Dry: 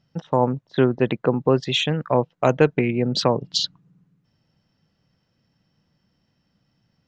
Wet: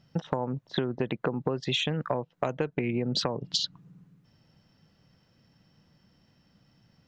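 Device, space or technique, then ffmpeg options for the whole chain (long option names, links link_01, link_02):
serial compression, peaks first: -af "acompressor=threshold=-25dB:ratio=6,acompressor=threshold=-31dB:ratio=2.5,volume=4.5dB"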